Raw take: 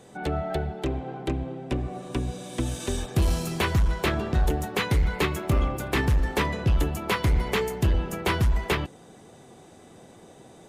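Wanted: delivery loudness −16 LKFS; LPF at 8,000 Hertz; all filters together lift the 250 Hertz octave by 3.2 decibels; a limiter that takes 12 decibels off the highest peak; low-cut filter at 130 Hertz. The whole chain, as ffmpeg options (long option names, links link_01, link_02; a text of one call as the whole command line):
ffmpeg -i in.wav -af "highpass=130,lowpass=8000,equalizer=frequency=250:width_type=o:gain=5,volume=16.5dB,alimiter=limit=-6.5dB:level=0:latency=1" out.wav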